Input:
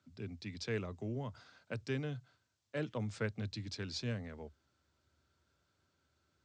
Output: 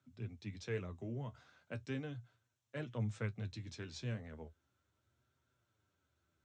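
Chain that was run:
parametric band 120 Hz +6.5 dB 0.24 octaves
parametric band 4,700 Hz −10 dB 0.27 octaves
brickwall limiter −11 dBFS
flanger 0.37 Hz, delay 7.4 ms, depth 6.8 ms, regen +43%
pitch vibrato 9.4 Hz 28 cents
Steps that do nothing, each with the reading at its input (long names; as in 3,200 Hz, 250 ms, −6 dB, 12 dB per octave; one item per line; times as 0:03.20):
brickwall limiter −11 dBFS: peak of its input −20.5 dBFS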